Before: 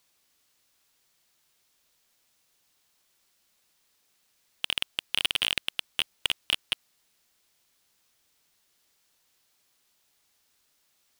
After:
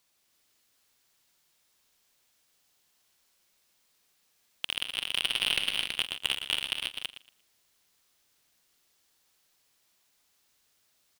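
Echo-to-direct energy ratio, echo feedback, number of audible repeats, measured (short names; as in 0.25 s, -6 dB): -1.0 dB, no steady repeat, 11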